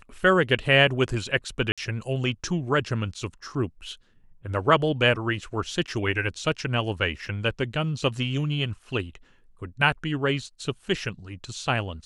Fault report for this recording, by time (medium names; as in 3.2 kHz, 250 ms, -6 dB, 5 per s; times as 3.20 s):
1.72–1.78 s: dropout 56 ms
5.87–5.88 s: dropout 6.8 ms
7.26 s: dropout 2.1 ms